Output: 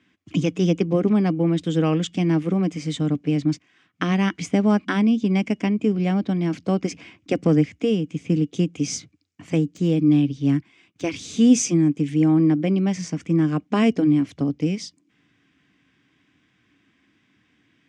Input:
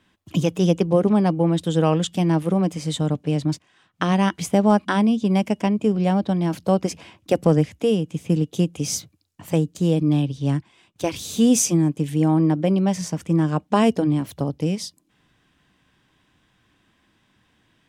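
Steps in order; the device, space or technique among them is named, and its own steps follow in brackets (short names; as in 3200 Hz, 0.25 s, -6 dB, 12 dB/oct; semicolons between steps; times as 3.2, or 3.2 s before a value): car door speaker (speaker cabinet 92–7100 Hz, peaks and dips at 280 Hz +8 dB, 580 Hz -6 dB, 900 Hz -9 dB, 2200 Hz +7 dB, 4000 Hz -4 dB); 9.75–11.05 de-esser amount 90%; gain -1.5 dB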